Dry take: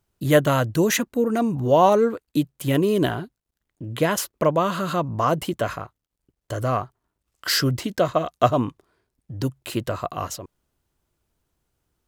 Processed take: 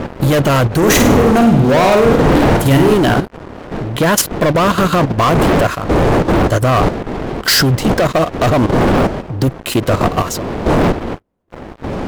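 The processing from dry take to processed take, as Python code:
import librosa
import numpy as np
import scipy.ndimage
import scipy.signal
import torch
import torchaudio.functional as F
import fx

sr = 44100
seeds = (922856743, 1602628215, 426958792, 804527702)

y = fx.dmg_wind(x, sr, seeds[0], corner_hz=470.0, level_db=-25.0)
y = fx.leveller(y, sr, passes=5)
y = fx.level_steps(y, sr, step_db=10)
y = fx.room_flutter(y, sr, wall_m=8.9, rt60_s=0.57, at=(0.77, 2.94))
y = y * librosa.db_to_amplitude(-1.0)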